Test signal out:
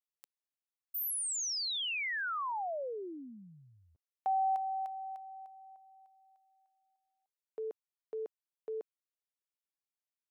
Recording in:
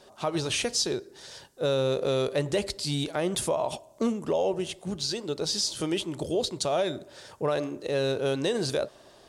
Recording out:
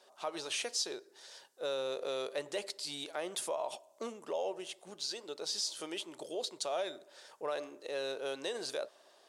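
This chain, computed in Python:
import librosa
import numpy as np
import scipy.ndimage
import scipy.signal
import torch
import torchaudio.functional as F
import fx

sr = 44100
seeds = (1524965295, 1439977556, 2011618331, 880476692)

y = scipy.signal.sosfilt(scipy.signal.butter(2, 490.0, 'highpass', fs=sr, output='sos'), x)
y = F.gain(torch.from_numpy(y), -7.5).numpy()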